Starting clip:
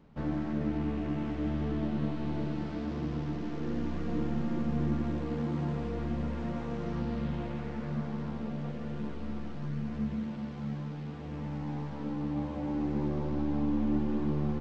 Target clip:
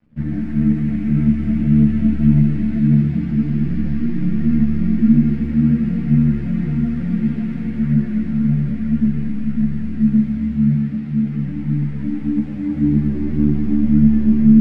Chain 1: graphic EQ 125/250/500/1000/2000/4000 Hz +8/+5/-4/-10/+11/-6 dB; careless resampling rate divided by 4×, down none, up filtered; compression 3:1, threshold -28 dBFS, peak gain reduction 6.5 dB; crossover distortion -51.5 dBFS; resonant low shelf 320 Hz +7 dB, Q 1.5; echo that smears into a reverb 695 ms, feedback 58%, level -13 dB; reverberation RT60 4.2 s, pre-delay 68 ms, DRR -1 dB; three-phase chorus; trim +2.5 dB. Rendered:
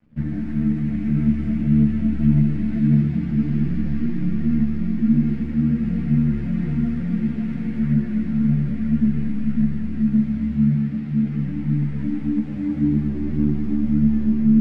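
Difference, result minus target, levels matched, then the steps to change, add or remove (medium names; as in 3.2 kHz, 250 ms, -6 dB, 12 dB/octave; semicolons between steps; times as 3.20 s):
compression: peak gain reduction +6.5 dB
remove: compression 3:1, threshold -28 dBFS, peak gain reduction 6.5 dB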